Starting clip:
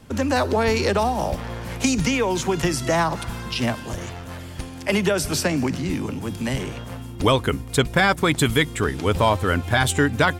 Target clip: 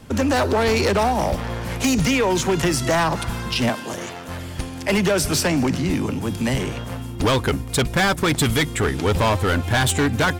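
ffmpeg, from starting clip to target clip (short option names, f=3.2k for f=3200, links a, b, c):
-filter_complex "[0:a]asettb=1/sr,asplit=3[a][b][c];[a]atrim=end=3.694[d];[b]atrim=start=3.69:end=4.29,asetpts=PTS-STARTPTS,afade=t=in:d=0.004:c=qsin,afade=t=out:st=0.596:d=0.004:c=qsin,highpass=210[e];[c]atrim=start=4.286[f];[d][e]acrossfade=d=0.004:c1=hsin:c2=qsin[g];[g][f]acrossfade=d=0.004:c1=qsin:c2=hsin,asoftclip=type=hard:threshold=-19dB,volume=4dB"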